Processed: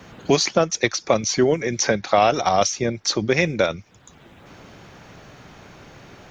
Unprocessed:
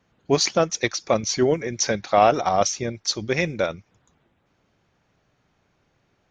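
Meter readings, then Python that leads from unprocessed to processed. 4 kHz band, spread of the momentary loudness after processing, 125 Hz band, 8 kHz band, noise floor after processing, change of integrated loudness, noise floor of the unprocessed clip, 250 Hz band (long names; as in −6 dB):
+2.0 dB, 5 LU, +2.5 dB, +1.5 dB, −50 dBFS, +2.0 dB, −68 dBFS, +3.0 dB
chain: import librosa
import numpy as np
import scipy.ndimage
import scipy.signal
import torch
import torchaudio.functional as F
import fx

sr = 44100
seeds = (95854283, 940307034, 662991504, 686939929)

y = fx.band_squash(x, sr, depth_pct=70)
y = F.gain(torch.from_numpy(y), 2.0).numpy()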